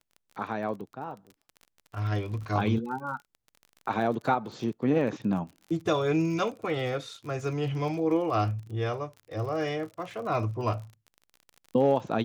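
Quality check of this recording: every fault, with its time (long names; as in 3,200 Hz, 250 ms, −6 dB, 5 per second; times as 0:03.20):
surface crackle 35 per second −38 dBFS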